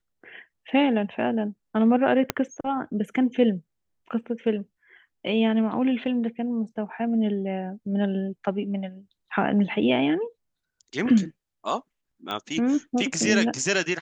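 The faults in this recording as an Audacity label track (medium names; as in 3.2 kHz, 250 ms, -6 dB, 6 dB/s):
2.300000	2.300000	pop -7 dBFS
12.310000	12.310000	pop -17 dBFS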